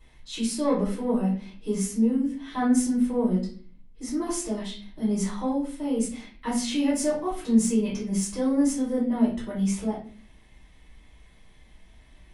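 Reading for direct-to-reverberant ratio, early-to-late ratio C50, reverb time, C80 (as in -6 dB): -9.5 dB, 6.0 dB, 0.45 s, 11.0 dB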